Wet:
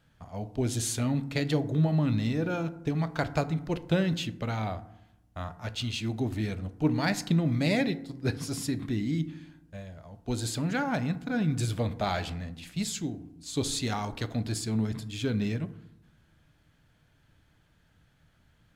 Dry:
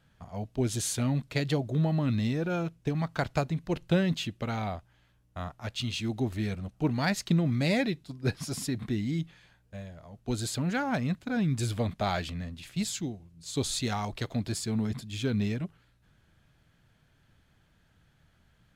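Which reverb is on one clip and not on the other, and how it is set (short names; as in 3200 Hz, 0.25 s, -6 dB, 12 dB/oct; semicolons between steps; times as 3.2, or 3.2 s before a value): FDN reverb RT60 0.82 s, low-frequency decay 1.3×, high-frequency decay 0.4×, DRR 11 dB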